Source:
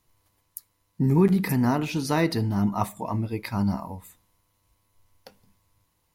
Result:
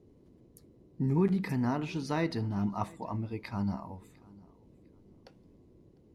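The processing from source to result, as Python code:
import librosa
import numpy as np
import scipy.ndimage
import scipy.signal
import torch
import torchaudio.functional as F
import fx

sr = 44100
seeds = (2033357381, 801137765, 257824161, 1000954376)

p1 = fx.air_absorb(x, sr, metres=66.0)
p2 = p1 + fx.echo_feedback(p1, sr, ms=702, feedback_pct=26, wet_db=-24.0, dry=0)
p3 = fx.dmg_noise_band(p2, sr, seeds[0], low_hz=35.0, high_hz=400.0, level_db=-52.0)
y = p3 * librosa.db_to_amplitude(-7.5)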